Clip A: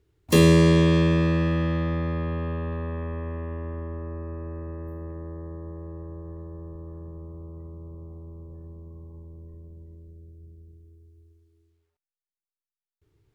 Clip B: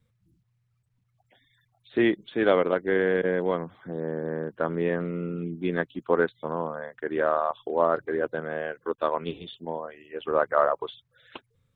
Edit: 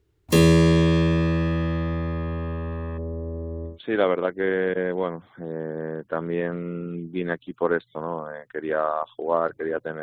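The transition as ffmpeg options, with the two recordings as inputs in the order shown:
-filter_complex "[0:a]asplit=3[a][b][c];[a]afade=t=out:st=2.97:d=0.02[d];[b]lowpass=f=520:t=q:w=1.5,afade=t=in:st=2.97:d=0.02,afade=t=out:st=3.79:d=0.02[e];[c]afade=t=in:st=3.79:d=0.02[f];[d][e][f]amix=inputs=3:normalize=0,apad=whole_dur=10.02,atrim=end=10.02,atrim=end=3.79,asetpts=PTS-STARTPTS[g];[1:a]atrim=start=2.13:end=8.5,asetpts=PTS-STARTPTS[h];[g][h]acrossfade=d=0.14:c1=tri:c2=tri"

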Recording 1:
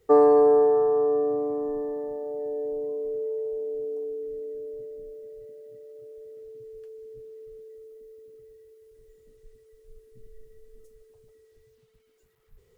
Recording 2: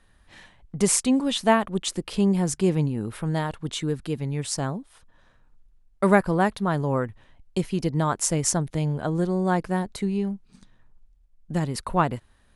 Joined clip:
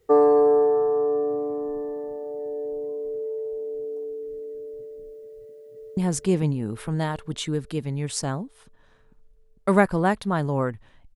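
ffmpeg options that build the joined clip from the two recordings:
-filter_complex "[0:a]apad=whole_dur=11.15,atrim=end=11.15,atrim=end=5.972[a];[1:a]atrim=start=2.318:end=7.5[b];[a][b]acrossfade=d=0.004:c1=hsin:c2=hsin,asplit=2[c][d];[d]afade=t=in:st=5.31:d=0.01,afade=t=out:st=5.97:d=0.01,aecho=0:1:450|900|1350|1800|2250|2700|3150|3600|4050|4500:0.562341|0.365522|0.237589|0.154433|0.100381|0.0652479|0.0424112|0.0275673|0.0179187|0.0116472[e];[c][e]amix=inputs=2:normalize=0"

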